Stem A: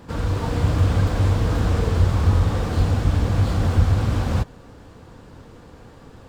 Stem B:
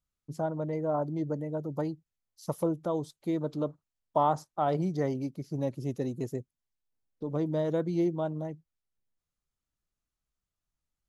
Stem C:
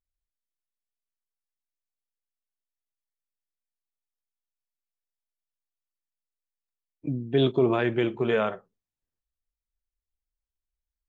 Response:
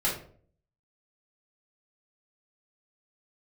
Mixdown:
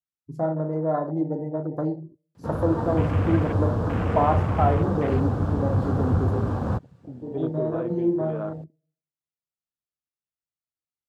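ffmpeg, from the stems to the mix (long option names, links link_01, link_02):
-filter_complex "[0:a]adelay=2350,volume=-0.5dB[link_01];[1:a]volume=2.5dB,asplit=2[link_02][link_03];[link_03]volume=-12dB[link_04];[2:a]volume=-9.5dB,asplit=2[link_05][link_06];[link_06]apad=whole_len=488690[link_07];[link_02][link_07]sidechaincompress=threshold=-45dB:ratio=8:attack=16:release=247[link_08];[3:a]atrim=start_sample=2205[link_09];[link_04][link_09]afir=irnorm=-1:irlink=0[link_10];[link_01][link_08][link_05][link_10]amix=inputs=4:normalize=0,highpass=110,afwtdn=0.02"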